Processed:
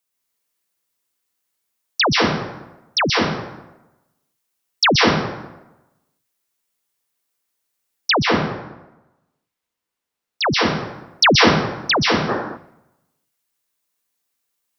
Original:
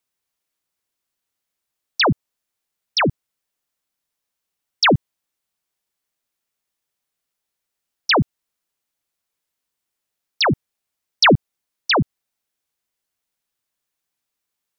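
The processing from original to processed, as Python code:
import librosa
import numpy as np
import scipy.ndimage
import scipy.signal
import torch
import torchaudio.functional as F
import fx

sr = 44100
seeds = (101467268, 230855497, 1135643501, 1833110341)

y = fx.peak_eq(x, sr, hz=1000.0, db=2.5, octaves=2.9)
y = fx.rev_plate(y, sr, seeds[0], rt60_s=1.0, hf_ratio=0.65, predelay_ms=115, drr_db=-1.5)
y = fx.spec_box(y, sr, start_s=12.29, length_s=0.28, low_hz=210.0, high_hz=1900.0, gain_db=9)
y = fx.high_shelf(y, sr, hz=5100.0, db=fx.steps((0.0, 8.0), (8.12, -4.0), (10.53, 8.0)))
y = y * 10.0 ** (-3.5 / 20.0)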